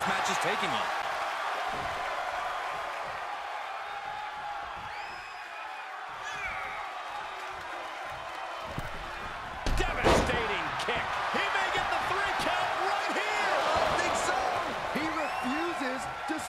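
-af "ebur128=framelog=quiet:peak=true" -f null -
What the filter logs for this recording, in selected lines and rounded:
Integrated loudness:
  I:         -31.2 LUFS
  Threshold: -41.2 LUFS
Loudness range:
  LRA:         9.0 LU
  Threshold: -51.4 LUFS
  LRA low:   -37.3 LUFS
  LRA high:  -28.2 LUFS
True peak:
  Peak:      -12.6 dBFS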